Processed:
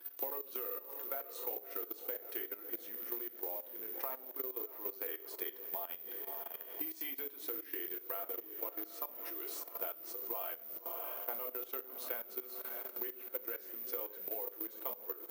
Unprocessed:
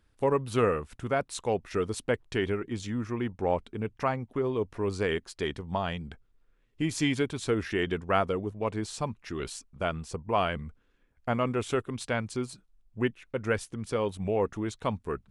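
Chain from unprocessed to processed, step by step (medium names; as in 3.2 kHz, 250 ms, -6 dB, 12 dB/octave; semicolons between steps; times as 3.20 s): echo that smears into a reverb 628 ms, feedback 49%, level -14.5 dB; reverberation, pre-delay 6 ms, DRR 2.5 dB; level held to a coarse grid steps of 14 dB; short-mantissa float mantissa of 2-bit; careless resampling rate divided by 3×, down filtered, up zero stuff; dynamic bell 8.9 kHz, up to -4 dB, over -42 dBFS, Q 1.4; compression 8:1, threshold -51 dBFS, peak gain reduction 30.5 dB; high-pass 340 Hz 24 dB/octave; trim +13.5 dB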